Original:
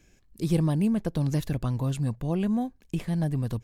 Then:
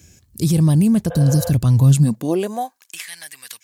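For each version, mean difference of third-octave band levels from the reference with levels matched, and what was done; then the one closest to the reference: 7.0 dB: spectral repair 1.13–1.48, 480–3800 Hz before; tone controls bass +5 dB, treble +13 dB; limiter -15.5 dBFS, peak gain reduction 6.5 dB; high-pass sweep 85 Hz -> 2000 Hz, 1.73–3.07; gain +6 dB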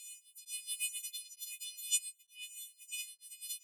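24.0 dB: frequency quantiser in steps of 3 st; rippled Chebyshev high-pass 2300 Hz, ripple 6 dB; on a send: reverse echo 0.428 s -20 dB; on the sum: beating tremolo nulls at 1.1 Hz; gain +4.5 dB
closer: first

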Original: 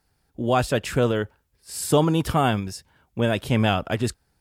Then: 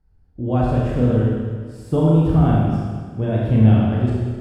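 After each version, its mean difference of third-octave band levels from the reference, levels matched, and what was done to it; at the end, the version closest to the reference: 11.5 dB: de-esser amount 50%; tilt -4.5 dB/oct; Schroeder reverb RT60 1.7 s, combs from 25 ms, DRR -5 dB; gain -10 dB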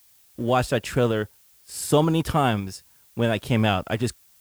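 1.5 dB: G.711 law mismatch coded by A; added noise blue -57 dBFS; bit-crush 11-bit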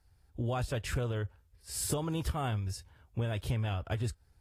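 3.5 dB: resonant low shelf 130 Hz +11 dB, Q 1.5; compressor 10:1, threshold -24 dBFS, peak gain reduction 13 dB; gain -5.5 dB; AAC 48 kbps 32000 Hz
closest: second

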